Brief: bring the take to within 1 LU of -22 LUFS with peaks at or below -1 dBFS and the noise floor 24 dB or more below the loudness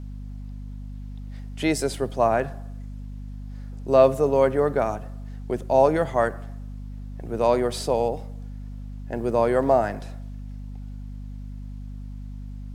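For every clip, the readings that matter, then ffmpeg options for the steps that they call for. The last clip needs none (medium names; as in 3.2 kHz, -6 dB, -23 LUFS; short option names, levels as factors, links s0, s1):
hum 50 Hz; highest harmonic 250 Hz; hum level -33 dBFS; loudness -23.0 LUFS; peak level -5.0 dBFS; loudness target -22.0 LUFS
-> -af "bandreject=f=50:t=h:w=6,bandreject=f=100:t=h:w=6,bandreject=f=150:t=h:w=6,bandreject=f=200:t=h:w=6,bandreject=f=250:t=h:w=6"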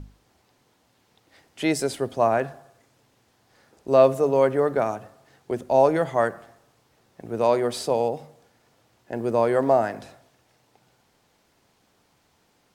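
hum not found; loudness -23.0 LUFS; peak level -5.5 dBFS; loudness target -22.0 LUFS
-> -af "volume=1.12"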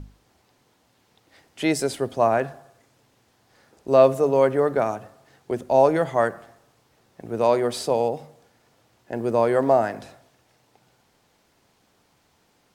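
loudness -22.0 LUFS; peak level -4.5 dBFS; noise floor -65 dBFS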